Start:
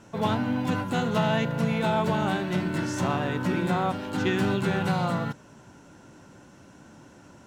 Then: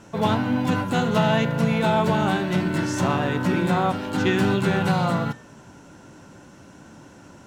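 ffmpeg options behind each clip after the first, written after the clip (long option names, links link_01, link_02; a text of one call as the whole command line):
ffmpeg -i in.wav -af "bandreject=frequency=119.4:width_type=h:width=4,bandreject=frequency=238.8:width_type=h:width=4,bandreject=frequency=358.2:width_type=h:width=4,bandreject=frequency=477.6:width_type=h:width=4,bandreject=frequency=597:width_type=h:width=4,bandreject=frequency=716.4:width_type=h:width=4,bandreject=frequency=835.8:width_type=h:width=4,bandreject=frequency=955.2:width_type=h:width=4,bandreject=frequency=1074.6:width_type=h:width=4,bandreject=frequency=1194:width_type=h:width=4,bandreject=frequency=1313.4:width_type=h:width=4,bandreject=frequency=1432.8:width_type=h:width=4,bandreject=frequency=1552.2:width_type=h:width=4,bandreject=frequency=1671.6:width_type=h:width=4,bandreject=frequency=1791:width_type=h:width=4,bandreject=frequency=1910.4:width_type=h:width=4,bandreject=frequency=2029.8:width_type=h:width=4,bandreject=frequency=2149.2:width_type=h:width=4,bandreject=frequency=2268.6:width_type=h:width=4,bandreject=frequency=2388:width_type=h:width=4,bandreject=frequency=2507.4:width_type=h:width=4,bandreject=frequency=2626.8:width_type=h:width=4,bandreject=frequency=2746.2:width_type=h:width=4,bandreject=frequency=2865.6:width_type=h:width=4,bandreject=frequency=2985:width_type=h:width=4,bandreject=frequency=3104.4:width_type=h:width=4,bandreject=frequency=3223.8:width_type=h:width=4,bandreject=frequency=3343.2:width_type=h:width=4,bandreject=frequency=3462.6:width_type=h:width=4,bandreject=frequency=3582:width_type=h:width=4,bandreject=frequency=3701.4:width_type=h:width=4,bandreject=frequency=3820.8:width_type=h:width=4,bandreject=frequency=3940.2:width_type=h:width=4,volume=4.5dB" out.wav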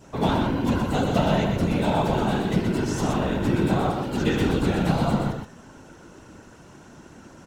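ffmpeg -i in.wav -af "afftfilt=real='hypot(re,im)*cos(2*PI*random(0))':imag='hypot(re,im)*sin(2*PI*random(1))':win_size=512:overlap=0.75,adynamicequalizer=threshold=0.00562:dfrequency=1600:dqfactor=0.85:tfrequency=1600:tqfactor=0.85:attack=5:release=100:ratio=0.375:range=3:mode=cutabove:tftype=bell,aecho=1:1:124:0.562,volume=4.5dB" out.wav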